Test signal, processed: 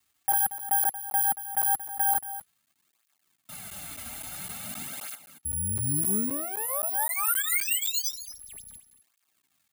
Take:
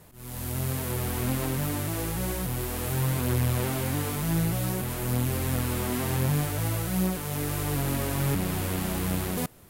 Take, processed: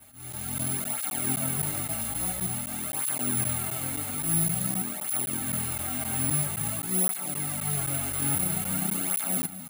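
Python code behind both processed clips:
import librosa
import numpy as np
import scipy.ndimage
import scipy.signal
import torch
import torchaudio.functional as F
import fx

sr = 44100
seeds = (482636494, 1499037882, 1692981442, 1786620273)

y = fx.lower_of_two(x, sr, delay_ms=1.4)
y = y + 10.0 ** (-13.0 / 20.0) * np.pad(y, (int(230 * sr / 1000.0), 0))[:len(y)]
y = fx.rider(y, sr, range_db=4, speed_s=2.0)
y = scipy.signal.sosfilt(scipy.signal.butter(4, 5200.0, 'lowpass', fs=sr, output='sos'), y)
y = fx.low_shelf_res(y, sr, hz=150.0, db=-7.5, q=1.5)
y = fx.dmg_crackle(y, sr, seeds[0], per_s=360.0, level_db=-56.0)
y = fx.peak_eq(y, sr, hz=510.0, db=-8.0, octaves=1.2)
y = (np.kron(scipy.signal.resample_poly(y, 1, 4), np.eye(4)[0]) * 4)[:len(y)]
y = fx.notch_comb(y, sr, f0_hz=490.0)
y = fx.buffer_crackle(y, sr, first_s=0.32, period_s=0.26, block=512, kind='zero')
y = fx.flanger_cancel(y, sr, hz=0.49, depth_ms=6.1)
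y = F.gain(torch.from_numpy(y), 3.0).numpy()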